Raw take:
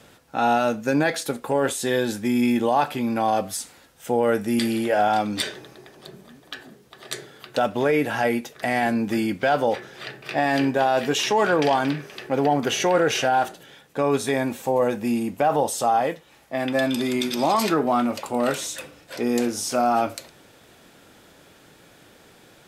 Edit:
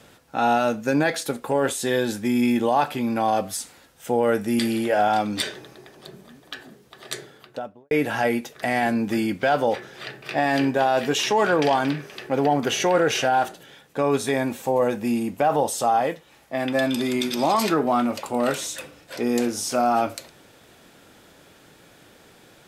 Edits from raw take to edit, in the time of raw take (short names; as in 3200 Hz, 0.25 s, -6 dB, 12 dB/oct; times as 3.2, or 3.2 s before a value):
7.14–7.91 studio fade out